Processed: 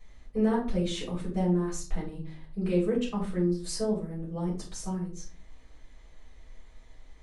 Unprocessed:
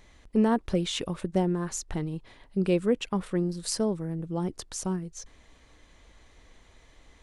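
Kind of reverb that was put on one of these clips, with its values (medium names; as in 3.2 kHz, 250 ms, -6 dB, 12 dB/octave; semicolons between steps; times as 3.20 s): simulated room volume 210 m³, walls furnished, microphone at 6.1 m; trim -14 dB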